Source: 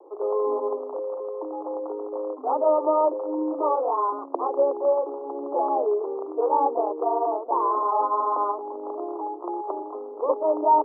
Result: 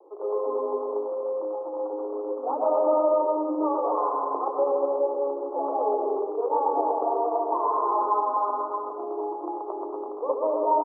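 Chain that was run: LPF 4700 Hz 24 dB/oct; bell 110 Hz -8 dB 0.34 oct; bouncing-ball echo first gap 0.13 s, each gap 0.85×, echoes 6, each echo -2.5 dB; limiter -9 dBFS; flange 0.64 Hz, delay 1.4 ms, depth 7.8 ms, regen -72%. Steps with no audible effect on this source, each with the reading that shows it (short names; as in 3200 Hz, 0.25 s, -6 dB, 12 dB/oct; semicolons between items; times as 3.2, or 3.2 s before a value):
LPF 4700 Hz: input band ends at 1300 Hz; bell 110 Hz: input band starts at 250 Hz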